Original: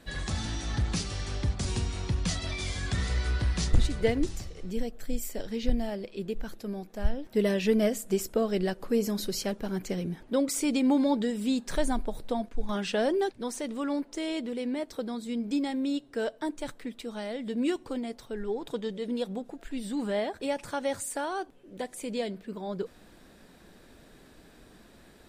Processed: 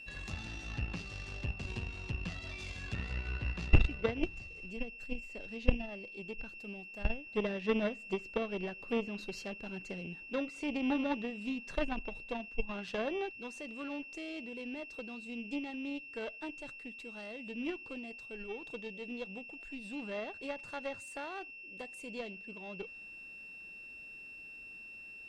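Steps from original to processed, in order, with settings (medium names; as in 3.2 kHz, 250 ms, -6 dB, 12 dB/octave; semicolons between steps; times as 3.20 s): low-pass that closes with the level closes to 2.3 kHz, closed at -23.5 dBFS; whistle 2.7 kHz -35 dBFS; Chebyshev shaper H 2 -14 dB, 3 -12 dB, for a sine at -11.5 dBFS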